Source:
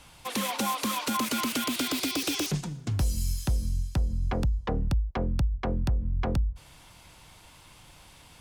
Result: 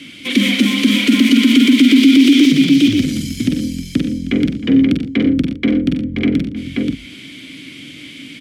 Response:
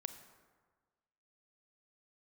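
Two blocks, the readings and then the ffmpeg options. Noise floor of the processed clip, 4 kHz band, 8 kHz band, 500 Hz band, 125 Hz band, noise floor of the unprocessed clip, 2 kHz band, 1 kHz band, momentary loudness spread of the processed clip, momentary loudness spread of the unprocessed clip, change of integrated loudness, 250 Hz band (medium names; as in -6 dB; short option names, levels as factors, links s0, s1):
-36 dBFS, +15.5 dB, +4.5 dB, +11.0 dB, +5.5 dB, -53 dBFS, +16.5 dB, no reading, 24 LU, 3 LU, +16.0 dB, +23.5 dB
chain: -filter_complex "[0:a]lowshelf=f=340:g=4.5,asplit=2[s0][s1];[s1]aecho=0:1:90|119|313|530:0.224|0.237|0.1|0.531[s2];[s0][s2]amix=inputs=2:normalize=0,acontrast=83,highpass=100,asoftclip=type=tanh:threshold=0.106,asplit=3[s3][s4][s5];[s3]bandpass=f=270:t=q:w=8,volume=1[s6];[s4]bandpass=f=2290:t=q:w=8,volume=0.501[s7];[s5]bandpass=f=3010:t=q:w=8,volume=0.355[s8];[s6][s7][s8]amix=inputs=3:normalize=0,highshelf=f=7700:g=8.5,asplit=2[s9][s10];[s10]adelay=44,volume=0.376[s11];[s9][s11]amix=inputs=2:normalize=0,alimiter=level_in=15.8:limit=0.891:release=50:level=0:latency=1,volume=0.891" -ar 48000 -c:a libvorbis -b:a 64k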